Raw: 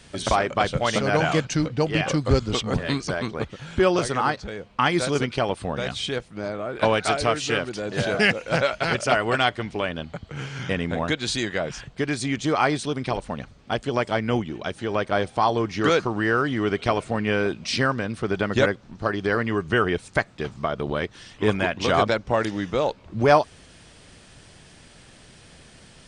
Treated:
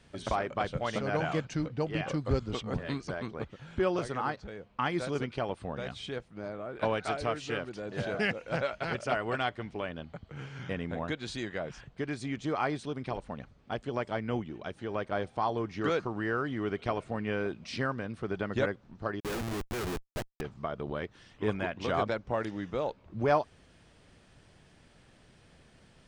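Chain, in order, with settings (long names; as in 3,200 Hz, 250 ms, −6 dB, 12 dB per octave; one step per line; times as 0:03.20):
high-shelf EQ 3,400 Hz −9.5 dB
0:19.20–0:20.41: comparator with hysteresis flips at −28 dBFS
level −9 dB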